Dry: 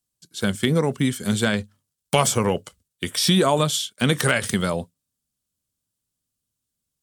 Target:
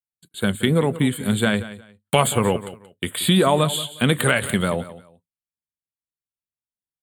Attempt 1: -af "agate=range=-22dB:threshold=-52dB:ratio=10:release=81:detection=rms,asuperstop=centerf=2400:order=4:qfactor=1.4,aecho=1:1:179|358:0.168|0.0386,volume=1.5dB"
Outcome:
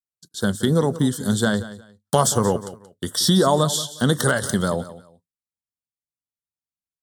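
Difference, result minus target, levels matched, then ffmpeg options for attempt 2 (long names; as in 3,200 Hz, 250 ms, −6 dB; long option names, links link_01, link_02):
2,000 Hz band −3.5 dB
-af "agate=range=-22dB:threshold=-52dB:ratio=10:release=81:detection=rms,asuperstop=centerf=5600:order=4:qfactor=1.4,aecho=1:1:179|358:0.168|0.0386,volume=1.5dB"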